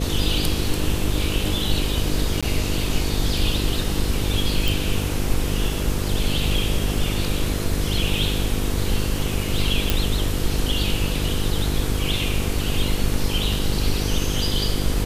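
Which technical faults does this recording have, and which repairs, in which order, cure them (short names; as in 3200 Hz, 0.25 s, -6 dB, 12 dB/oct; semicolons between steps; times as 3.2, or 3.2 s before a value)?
buzz 50 Hz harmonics 10 -26 dBFS
2.41–2.43 gap 16 ms
4.68 pop
9.9 pop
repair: de-click; de-hum 50 Hz, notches 10; interpolate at 2.41, 16 ms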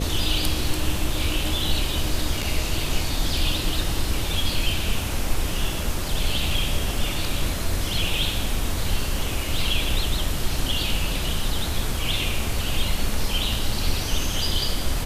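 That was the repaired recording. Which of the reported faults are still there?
none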